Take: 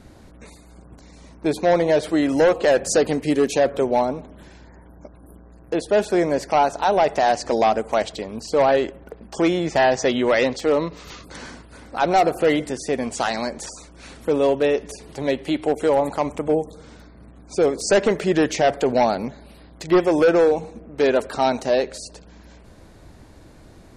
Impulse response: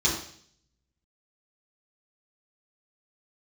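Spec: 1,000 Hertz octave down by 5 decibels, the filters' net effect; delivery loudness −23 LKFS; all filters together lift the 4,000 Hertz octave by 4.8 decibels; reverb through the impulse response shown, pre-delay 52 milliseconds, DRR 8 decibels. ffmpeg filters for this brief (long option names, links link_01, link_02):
-filter_complex "[0:a]equalizer=frequency=1000:width_type=o:gain=-8,equalizer=frequency=4000:width_type=o:gain=6.5,asplit=2[link_01][link_02];[1:a]atrim=start_sample=2205,adelay=52[link_03];[link_02][link_03]afir=irnorm=-1:irlink=0,volume=-19.5dB[link_04];[link_01][link_04]amix=inputs=2:normalize=0,volume=-2dB"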